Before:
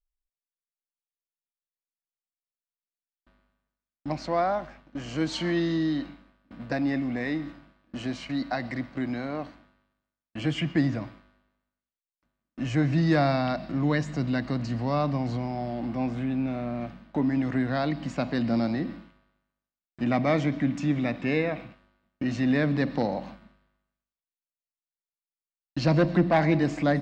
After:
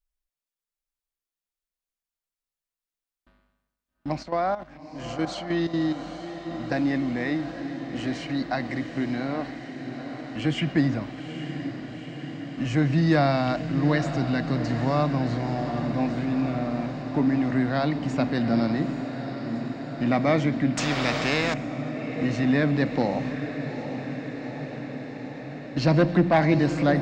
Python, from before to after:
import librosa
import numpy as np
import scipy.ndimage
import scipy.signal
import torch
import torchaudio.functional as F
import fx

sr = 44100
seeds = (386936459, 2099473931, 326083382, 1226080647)

y = fx.level_steps(x, sr, step_db=13, at=(4.22, 6.04), fade=0.02)
y = fx.echo_diffused(y, sr, ms=839, feedback_pct=75, wet_db=-9.5)
y = fx.spectral_comp(y, sr, ratio=2.0, at=(20.77, 21.54))
y = y * librosa.db_to_amplitude(2.0)